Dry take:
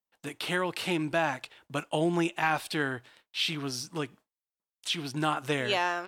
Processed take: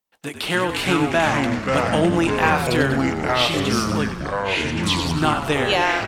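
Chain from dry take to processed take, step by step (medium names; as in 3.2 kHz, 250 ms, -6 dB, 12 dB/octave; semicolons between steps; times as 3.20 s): frequency-shifting echo 96 ms, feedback 57%, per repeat -48 Hz, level -9.5 dB; ever faster or slower copies 236 ms, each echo -4 st, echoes 3; trim +8 dB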